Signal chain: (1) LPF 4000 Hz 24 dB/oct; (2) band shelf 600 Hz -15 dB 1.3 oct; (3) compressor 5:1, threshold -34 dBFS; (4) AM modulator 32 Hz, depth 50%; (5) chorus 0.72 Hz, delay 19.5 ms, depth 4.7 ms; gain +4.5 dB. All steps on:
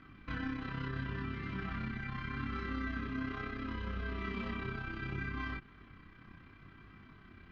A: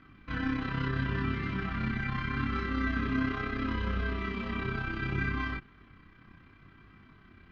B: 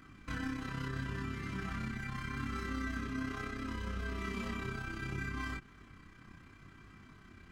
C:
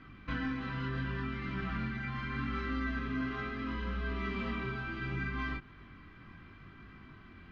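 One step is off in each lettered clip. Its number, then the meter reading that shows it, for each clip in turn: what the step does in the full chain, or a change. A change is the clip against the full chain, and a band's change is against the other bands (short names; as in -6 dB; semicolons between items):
3, momentary loudness spread change -14 LU; 1, 4 kHz band +1.5 dB; 4, loudness change +3.0 LU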